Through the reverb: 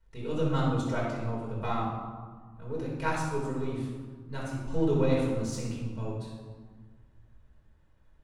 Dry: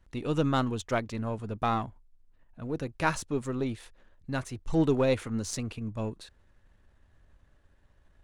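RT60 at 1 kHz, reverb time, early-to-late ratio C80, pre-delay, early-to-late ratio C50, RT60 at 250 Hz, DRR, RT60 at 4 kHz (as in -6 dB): 1.5 s, 1.5 s, 3.0 dB, 4 ms, 0.0 dB, 2.2 s, -5.5 dB, 0.85 s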